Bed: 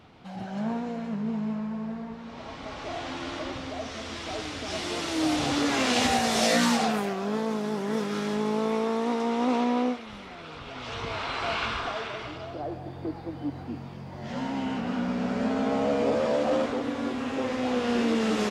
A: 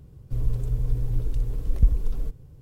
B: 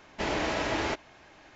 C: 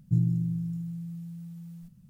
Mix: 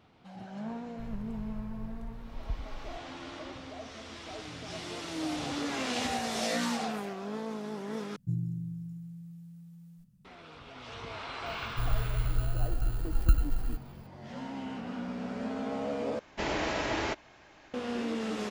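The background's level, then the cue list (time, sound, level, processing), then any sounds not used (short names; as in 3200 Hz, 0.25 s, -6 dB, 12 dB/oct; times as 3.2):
bed -8.5 dB
0.67 add A -17.5 dB
4.37 add C -17.5 dB + compressor, threshold -30 dBFS
8.16 replace with C -8 dB
11.46 add A -4.5 dB + FFT order left unsorted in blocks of 32 samples
16.19 replace with B -2 dB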